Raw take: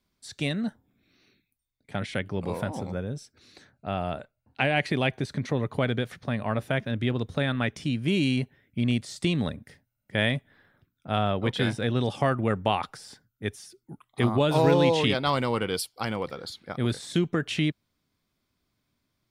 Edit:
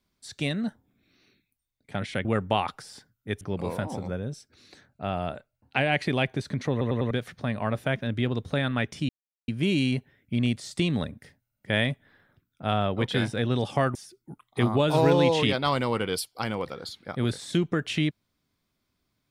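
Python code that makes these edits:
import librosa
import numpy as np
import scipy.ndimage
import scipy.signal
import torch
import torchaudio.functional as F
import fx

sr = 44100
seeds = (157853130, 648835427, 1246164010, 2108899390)

y = fx.edit(x, sr, fx.stutter_over(start_s=5.55, slice_s=0.1, count=4),
    fx.insert_silence(at_s=7.93, length_s=0.39),
    fx.move(start_s=12.4, length_s=1.16, to_s=2.25), tone=tone)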